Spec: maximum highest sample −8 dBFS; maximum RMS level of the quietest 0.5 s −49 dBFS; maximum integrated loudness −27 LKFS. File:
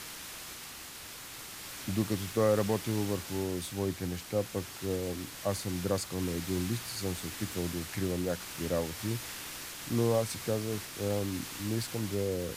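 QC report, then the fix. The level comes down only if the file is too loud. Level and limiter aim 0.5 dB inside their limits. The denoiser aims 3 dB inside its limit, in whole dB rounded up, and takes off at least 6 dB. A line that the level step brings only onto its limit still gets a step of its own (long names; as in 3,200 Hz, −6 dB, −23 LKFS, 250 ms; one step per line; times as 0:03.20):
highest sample −16.0 dBFS: in spec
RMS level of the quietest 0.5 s −46 dBFS: out of spec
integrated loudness −34.0 LKFS: in spec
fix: broadband denoise 6 dB, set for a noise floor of −46 dBFS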